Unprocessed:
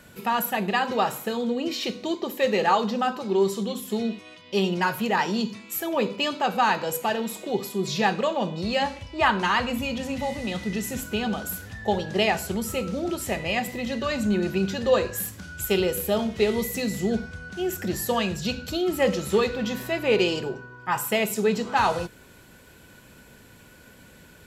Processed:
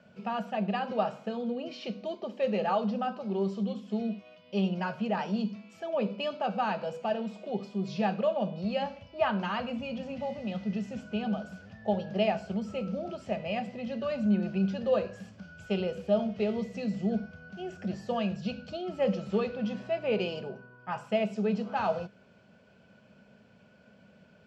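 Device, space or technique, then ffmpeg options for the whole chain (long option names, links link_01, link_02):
guitar cabinet: -af "highpass=110,equalizer=frequency=200:width_type=q:width=4:gain=9,equalizer=frequency=320:width_type=q:width=4:gain=-10,equalizer=frequency=630:width_type=q:width=4:gain=9,equalizer=frequency=1000:width_type=q:width=4:gain=-5,equalizer=frequency=1900:width_type=q:width=4:gain=-9,equalizer=frequency=3800:width_type=q:width=4:gain=-10,lowpass=frequency=4600:width=0.5412,lowpass=frequency=4600:width=1.3066,volume=-8dB"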